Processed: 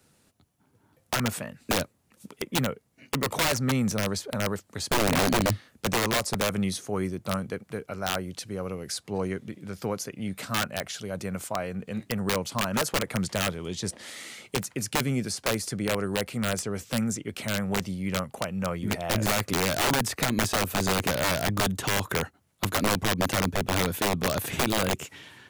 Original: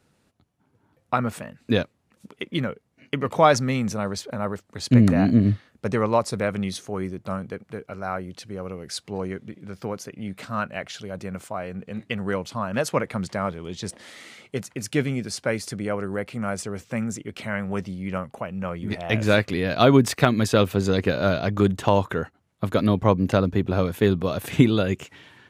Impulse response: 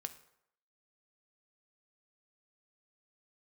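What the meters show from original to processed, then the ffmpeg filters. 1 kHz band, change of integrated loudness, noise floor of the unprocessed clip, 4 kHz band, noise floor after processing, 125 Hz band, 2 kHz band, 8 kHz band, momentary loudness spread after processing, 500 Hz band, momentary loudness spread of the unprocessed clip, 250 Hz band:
-3.0 dB, -4.0 dB, -67 dBFS, +3.5 dB, -66 dBFS, -6.0 dB, 0.0 dB, +6.0 dB, 9 LU, -6.0 dB, 16 LU, -6.0 dB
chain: -filter_complex "[0:a]acrossover=split=90|1900|6100[a][b][c][d];[a]acompressor=threshold=-39dB:ratio=4[e];[b]acompressor=threshold=-20dB:ratio=4[f];[c]acompressor=threshold=-42dB:ratio=4[g];[d]acompressor=threshold=-45dB:ratio=4[h];[e][f][g][h]amix=inputs=4:normalize=0,highshelf=f=5.6k:g=11.5,aeval=exprs='(mod(7.5*val(0)+1,2)-1)/7.5':c=same"

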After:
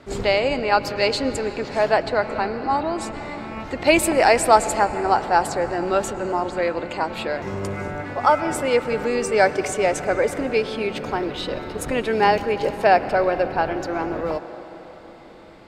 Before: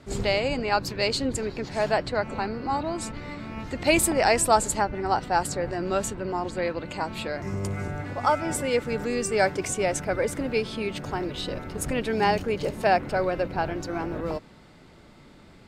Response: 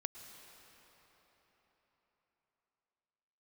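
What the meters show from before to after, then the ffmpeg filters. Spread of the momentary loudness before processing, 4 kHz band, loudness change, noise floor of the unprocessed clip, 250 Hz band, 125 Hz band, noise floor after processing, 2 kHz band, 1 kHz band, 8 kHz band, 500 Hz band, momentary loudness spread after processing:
10 LU, +3.0 dB, +5.0 dB, -51 dBFS, +3.0 dB, -1.0 dB, -41 dBFS, +5.0 dB, +6.0 dB, -0.5 dB, +6.0 dB, 12 LU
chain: -filter_complex "[0:a]asplit=2[a][b];[b]highpass=250,lowpass=7.2k[c];[1:a]atrim=start_sample=2205,highshelf=f=3.9k:g=-8.5[d];[c][d]afir=irnorm=-1:irlink=0,volume=3dB[e];[a][e]amix=inputs=2:normalize=0"

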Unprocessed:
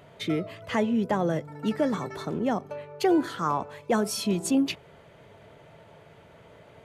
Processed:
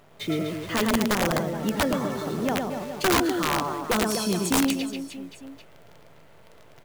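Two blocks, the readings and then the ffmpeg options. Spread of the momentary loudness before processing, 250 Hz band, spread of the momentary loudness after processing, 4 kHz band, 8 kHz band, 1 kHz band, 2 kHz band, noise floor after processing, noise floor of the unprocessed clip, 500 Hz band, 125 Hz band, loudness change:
7 LU, +1.0 dB, 11 LU, +7.0 dB, +7.0 dB, +3.0 dB, +7.5 dB, -51 dBFS, -53 dBFS, +1.0 dB, +2.5 dB, +2.5 dB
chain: -af "acrusher=bits=8:dc=4:mix=0:aa=0.000001,aecho=1:1:110|247.5|419.4|634.2|902.8:0.631|0.398|0.251|0.158|0.1,aeval=exprs='(mod(5.96*val(0)+1,2)-1)/5.96':c=same"

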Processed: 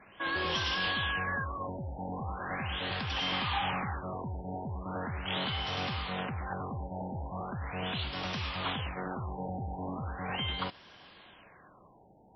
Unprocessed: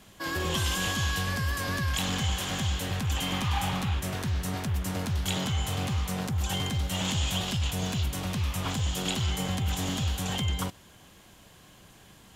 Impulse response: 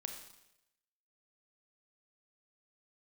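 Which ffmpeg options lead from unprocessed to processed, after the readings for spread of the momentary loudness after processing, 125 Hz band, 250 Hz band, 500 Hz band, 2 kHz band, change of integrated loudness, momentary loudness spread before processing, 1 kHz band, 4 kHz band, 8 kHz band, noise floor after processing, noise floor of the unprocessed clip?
9 LU, -9.5 dB, -6.5 dB, -1.5 dB, -1.0 dB, -5.0 dB, 3 LU, 0.0 dB, -3.5 dB, under -20 dB, -58 dBFS, -54 dBFS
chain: -filter_complex "[0:a]asplit=2[a][b];[b]highpass=f=720:p=1,volume=15dB,asoftclip=type=tanh:threshold=-15dB[c];[a][c]amix=inputs=2:normalize=0,lowpass=f=4.7k:p=1,volume=-6dB,afftfilt=real='re*lt(b*sr/1024,910*pow(5900/910,0.5+0.5*sin(2*PI*0.39*pts/sr)))':imag='im*lt(b*sr/1024,910*pow(5900/910,0.5+0.5*sin(2*PI*0.39*pts/sr)))':win_size=1024:overlap=0.75,volume=-6dB"

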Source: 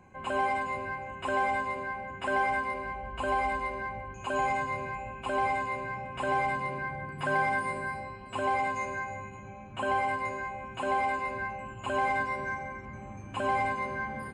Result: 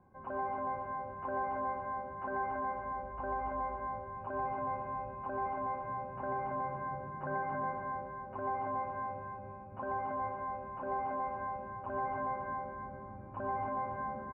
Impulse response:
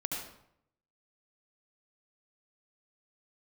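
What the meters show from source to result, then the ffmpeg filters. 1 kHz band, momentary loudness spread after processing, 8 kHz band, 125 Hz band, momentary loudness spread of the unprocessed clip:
-5.0 dB, 6 LU, under -30 dB, -5.5 dB, 9 LU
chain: -filter_complex "[0:a]lowpass=f=1.4k:w=0.5412,lowpass=f=1.4k:w=1.3066,asplit=2[a][b];[b]aecho=0:1:281|562|843|1124|1405:0.668|0.254|0.0965|0.0367|0.0139[c];[a][c]amix=inputs=2:normalize=0,volume=-7.5dB"

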